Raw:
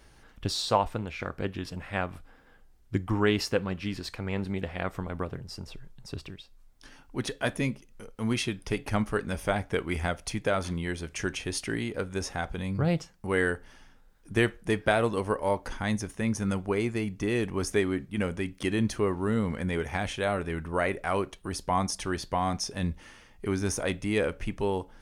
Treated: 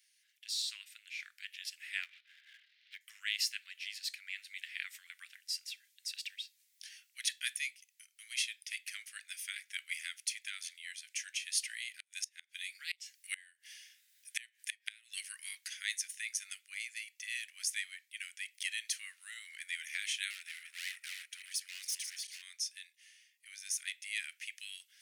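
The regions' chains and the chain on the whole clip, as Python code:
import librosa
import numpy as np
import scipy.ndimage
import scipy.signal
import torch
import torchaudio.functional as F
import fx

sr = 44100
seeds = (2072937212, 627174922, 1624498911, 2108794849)

y = fx.chain(x, sr, fx.steep_lowpass(hz=4000.0, slope=36),
    fx.leveller(passes=1),
    fx.band_squash(depth_pct=100), at=(2.03, 3.01))
y = fx.chain(y, sr, fx.highpass(hz=1400.0, slope=24),
    fx.gate_flip(shuts_db=-25.0, range_db=-28), at=(11.99, 15.33))
y = fx.chain(y, sr, fx.reverse_delay_fb(ms=141, feedback_pct=55, wet_db=-8),
    fx.overload_stage(gain_db=29.0), at=(20.3, 22.42))
y = scipy.signal.sosfilt(scipy.signal.butter(8, 1900.0, 'highpass', fs=sr, output='sos'), y)
y = fx.high_shelf(y, sr, hz=5200.0, db=7.0)
y = fx.rider(y, sr, range_db=10, speed_s=2.0)
y = F.gain(torch.from_numpy(y), -4.5).numpy()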